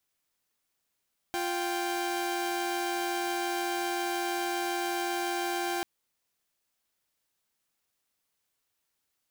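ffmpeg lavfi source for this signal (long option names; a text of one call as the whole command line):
ffmpeg -f lavfi -i "aevalsrc='0.0335*((2*mod(349.23*t,1)-1)+(2*mod(783.99*t,1)-1))':duration=4.49:sample_rate=44100" out.wav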